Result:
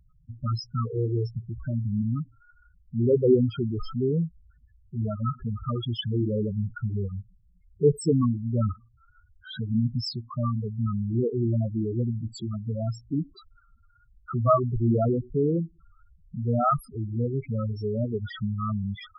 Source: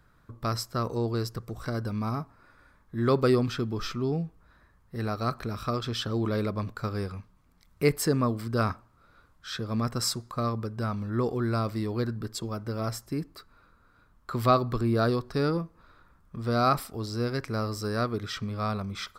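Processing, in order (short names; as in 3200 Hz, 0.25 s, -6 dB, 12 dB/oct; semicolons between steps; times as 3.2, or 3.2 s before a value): loudest bins only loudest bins 4; gain +5.5 dB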